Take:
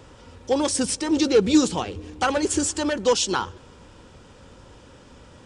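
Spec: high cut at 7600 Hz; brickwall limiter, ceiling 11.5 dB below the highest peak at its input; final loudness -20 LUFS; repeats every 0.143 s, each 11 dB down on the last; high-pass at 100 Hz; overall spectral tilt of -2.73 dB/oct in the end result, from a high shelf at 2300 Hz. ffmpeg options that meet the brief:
-af "highpass=100,lowpass=7.6k,highshelf=f=2.3k:g=7,alimiter=limit=-17.5dB:level=0:latency=1,aecho=1:1:143|286|429:0.282|0.0789|0.0221,volume=6.5dB"

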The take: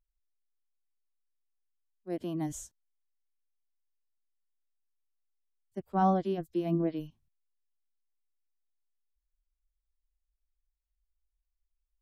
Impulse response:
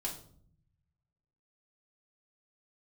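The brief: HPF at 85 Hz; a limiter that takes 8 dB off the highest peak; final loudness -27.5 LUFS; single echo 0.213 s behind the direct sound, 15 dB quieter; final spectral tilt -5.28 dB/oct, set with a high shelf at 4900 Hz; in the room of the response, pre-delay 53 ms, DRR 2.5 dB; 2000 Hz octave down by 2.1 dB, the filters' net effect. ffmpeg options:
-filter_complex "[0:a]highpass=85,equalizer=f=2k:t=o:g=-4,highshelf=f=4.9k:g=5.5,alimiter=limit=-23.5dB:level=0:latency=1,aecho=1:1:213:0.178,asplit=2[a][b];[1:a]atrim=start_sample=2205,adelay=53[c];[b][c]afir=irnorm=-1:irlink=0,volume=-3.5dB[d];[a][d]amix=inputs=2:normalize=0,volume=4.5dB"

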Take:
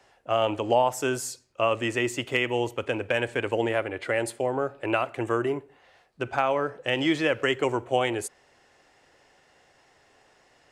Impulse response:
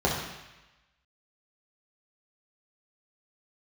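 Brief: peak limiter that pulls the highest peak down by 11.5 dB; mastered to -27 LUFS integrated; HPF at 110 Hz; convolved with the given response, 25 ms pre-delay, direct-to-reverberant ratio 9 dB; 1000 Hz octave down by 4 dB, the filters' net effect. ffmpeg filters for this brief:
-filter_complex "[0:a]highpass=110,equalizer=f=1k:t=o:g=-5.5,alimiter=limit=-22dB:level=0:latency=1,asplit=2[a][b];[1:a]atrim=start_sample=2205,adelay=25[c];[b][c]afir=irnorm=-1:irlink=0,volume=-23.5dB[d];[a][d]amix=inputs=2:normalize=0,volume=5dB"

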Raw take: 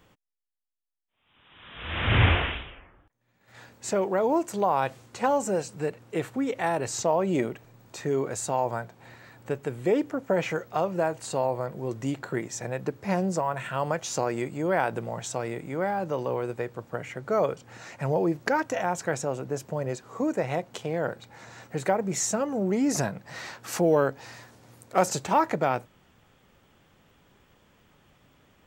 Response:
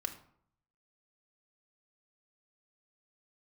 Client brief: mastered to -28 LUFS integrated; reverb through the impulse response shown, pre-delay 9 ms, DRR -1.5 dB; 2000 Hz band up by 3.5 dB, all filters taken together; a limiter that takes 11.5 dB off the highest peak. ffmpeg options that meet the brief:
-filter_complex "[0:a]equalizer=f=2k:t=o:g=4.5,alimiter=limit=-17.5dB:level=0:latency=1,asplit=2[a][b];[1:a]atrim=start_sample=2205,adelay=9[c];[b][c]afir=irnorm=-1:irlink=0,volume=1dB[d];[a][d]amix=inputs=2:normalize=0,volume=-1.5dB"

